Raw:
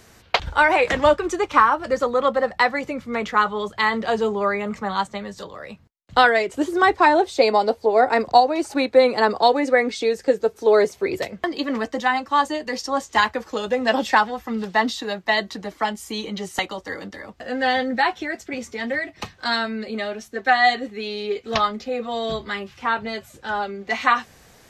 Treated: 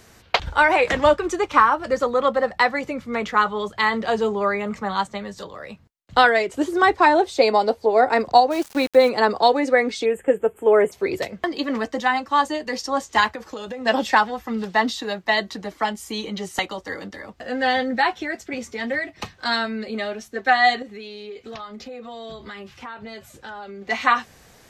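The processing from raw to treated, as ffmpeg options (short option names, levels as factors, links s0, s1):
-filter_complex "[0:a]asplit=3[s0][s1][s2];[s0]afade=t=out:st=8.5:d=0.02[s3];[s1]aeval=exprs='val(0)*gte(abs(val(0)),0.0282)':c=same,afade=t=in:st=8.5:d=0.02,afade=t=out:st=9.08:d=0.02[s4];[s2]afade=t=in:st=9.08:d=0.02[s5];[s3][s4][s5]amix=inputs=3:normalize=0,asplit=3[s6][s7][s8];[s6]afade=t=out:st=10.04:d=0.02[s9];[s7]asuperstop=centerf=4900:order=12:qfactor=1.2,afade=t=in:st=10.04:d=0.02,afade=t=out:st=10.91:d=0.02[s10];[s8]afade=t=in:st=10.91:d=0.02[s11];[s9][s10][s11]amix=inputs=3:normalize=0,asettb=1/sr,asplit=3[s12][s13][s14];[s12]atrim=end=13.354[s15];[s13]atrim=start=13.35:end=13.86,asetpts=PTS-STARTPTS,afade=t=in:d=0.004:c=qsin,afade=t=out:st=0.506:d=0.004:c=qsin,acompressor=threshold=0.0398:ratio=8:attack=3.2:release=140:knee=1:detection=peak[s16];[s14]atrim=start=13.856[s17];[s15][s16]acrossfade=d=0.004:c1=hsin:c2=qsin[s18];[s18][s17]acrossfade=d=0.004:c1=qsin:c2=hsin,asettb=1/sr,asplit=3[s19][s20][s21];[s19]atrim=end=20.824[s22];[s20]atrim=start=20.82:end=23.82,asetpts=PTS-STARTPTS,afade=t=in:d=0.004:c=qsin,afade=t=out:st=2.996:d=0.004:c=qsin,acompressor=threshold=0.0224:ratio=6:attack=3.2:release=140:knee=1:detection=peak[s23];[s21]atrim=start=23.816[s24];[s22][s23]acrossfade=d=0.004:c1=hsin:c2=qsin[s25];[s25][s24]acrossfade=d=0.004:c1=qsin:c2=hsin"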